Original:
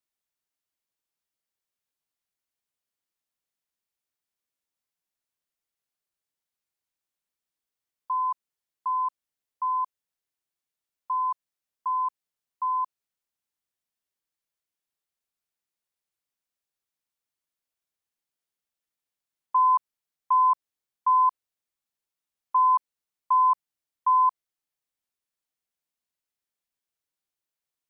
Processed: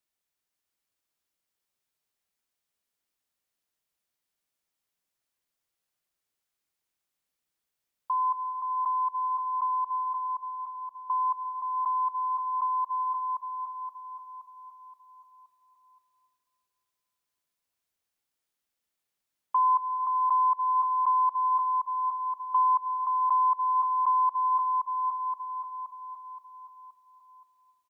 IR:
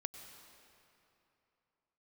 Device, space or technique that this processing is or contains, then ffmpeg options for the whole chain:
ducked reverb: -filter_complex "[0:a]asplit=3[a][b][c];[a]afade=t=out:st=9.71:d=0.02[d];[b]tiltshelf=f=840:g=5.5,afade=t=in:st=9.71:d=0.02,afade=t=out:st=11.28:d=0.02[e];[c]afade=t=in:st=11.28:d=0.02[f];[d][e][f]amix=inputs=3:normalize=0,aecho=1:1:523|1046|1569|2092|2615|3138:0.531|0.255|0.122|0.0587|0.0282|0.0135,asplit=3[g][h][i];[1:a]atrim=start_sample=2205[j];[h][j]afir=irnorm=-1:irlink=0[k];[i]apad=whole_len=1309844[l];[k][l]sidechaincompress=threshold=-29dB:ratio=8:attack=12:release=368,volume=8.5dB[m];[g][m]amix=inputs=2:normalize=0,volume=-7dB"

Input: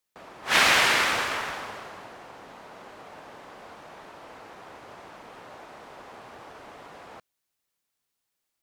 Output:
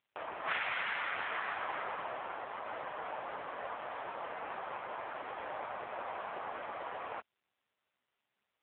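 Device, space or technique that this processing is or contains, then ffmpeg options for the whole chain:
voicemail: -filter_complex "[0:a]asettb=1/sr,asplit=3[a][b][c];[a]atrim=end=4.614[d];[b]atrim=start=4.61:end=5.07,asetpts=PTS-STARTPTS,afade=t=in:d=0.004:c=qsin,afade=t=out:st=0.456:d=0.004:c=qsin,bandreject=f=50:t=h:w=6,bandreject=f=100:t=h:w=6,bandreject=f=150:t=h:w=6,bandreject=f=200:t=h:w=6[e];[c]atrim=start=5.066[f];[d][e]acrossfade=d=0.004:c1=hsin:c2=qsin[g];[g][f]acrossfade=d=0.004:c1=qsin:c2=hsin,highpass=440,lowpass=2.8k,acompressor=threshold=-38dB:ratio=8,volume=8.5dB" -ar 8000 -c:a libopencore_amrnb -b:a 5900

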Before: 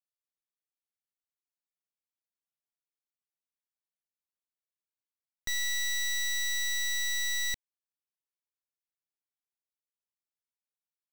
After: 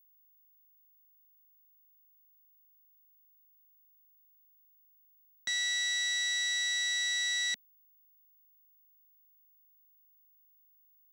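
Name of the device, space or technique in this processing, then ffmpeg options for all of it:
old television with a line whistle: -af "highpass=f=220:w=0.5412,highpass=f=220:w=1.3066,equalizer=f=320:t=q:w=4:g=-10,equalizer=f=460:t=q:w=4:g=-8,equalizer=f=1.1k:t=q:w=4:g=-4,equalizer=f=1.5k:t=q:w=4:g=4,equalizer=f=3.5k:t=q:w=4:g=5,lowpass=f=8.3k:w=0.5412,lowpass=f=8.3k:w=1.3066,aeval=exprs='val(0)+0.000708*sin(2*PI*15625*n/s)':c=same"

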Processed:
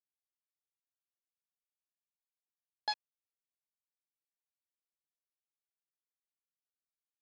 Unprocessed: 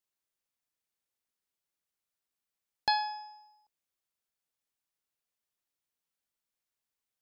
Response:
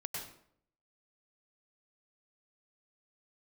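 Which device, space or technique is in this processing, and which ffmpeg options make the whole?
hand-held game console: -af "acrusher=bits=3:mix=0:aa=0.000001,highpass=500,equalizer=f=1.2k:t=q:w=4:g=-7,equalizer=f=1.8k:t=q:w=4:g=-5,equalizer=f=3k:t=q:w=4:g=-7,lowpass=f=4.3k:w=0.5412,lowpass=f=4.3k:w=1.3066,volume=-5dB"

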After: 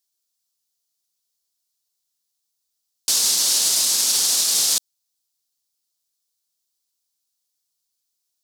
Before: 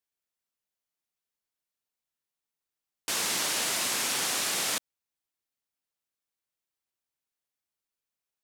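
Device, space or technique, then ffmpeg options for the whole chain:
over-bright horn tweeter: -af "highshelf=f=3.2k:t=q:w=1.5:g=12.5,alimiter=limit=-9dB:level=0:latency=1:release=36"

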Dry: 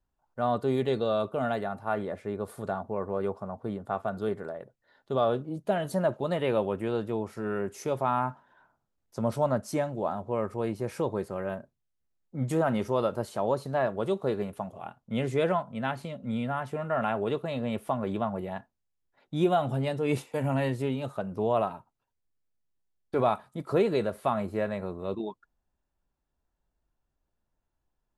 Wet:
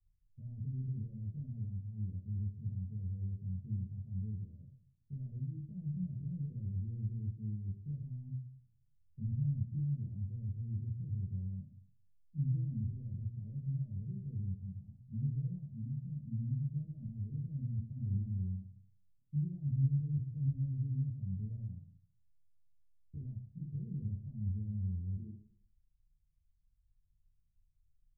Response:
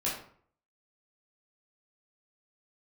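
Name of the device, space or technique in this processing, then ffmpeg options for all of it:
club heard from the street: -filter_complex "[0:a]alimiter=limit=-23.5dB:level=0:latency=1:release=27,lowpass=f=120:w=0.5412,lowpass=f=120:w=1.3066[a];[1:a]atrim=start_sample=2205[b];[a][b]afir=irnorm=-1:irlink=0,asettb=1/sr,asplit=3[c][d][e];[c]atrim=end=10.604[f];[d]atrim=start=10.6:end=11.23,asetpts=PTS-STARTPTS,afade=t=in:d=0.004:c=qsin,afade=t=out:st=0.626:d=0.004:c=qsin,equalizer=f=1.1k:w=0.91:g=-13[g];[e]atrim=start=11.226[h];[f][g]acrossfade=d=0.004:c1=hsin:c2=qsin[i];[i][h]acrossfade=d=0.004:c1=qsin:c2=hsin,volume=2.5dB"

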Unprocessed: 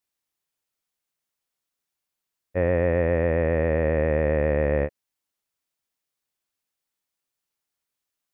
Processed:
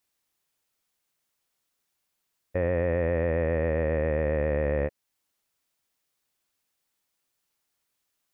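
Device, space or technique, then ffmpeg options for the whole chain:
stacked limiters: -af "alimiter=limit=-15.5dB:level=0:latency=1:release=366,alimiter=limit=-21.5dB:level=0:latency=1:release=23,volume=5.5dB"

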